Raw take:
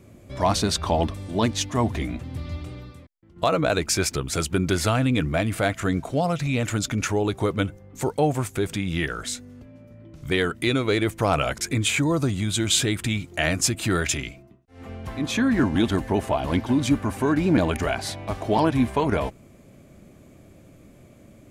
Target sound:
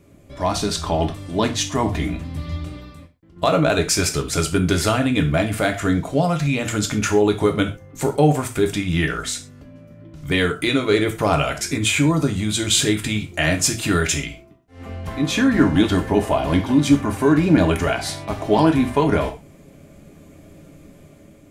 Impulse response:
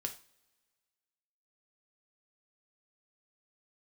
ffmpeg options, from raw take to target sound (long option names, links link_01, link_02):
-filter_complex "[0:a]dynaudnorm=framelen=430:gausssize=5:maxgain=6dB[link_01];[1:a]atrim=start_sample=2205,atrim=end_sample=6174[link_02];[link_01][link_02]afir=irnorm=-1:irlink=0"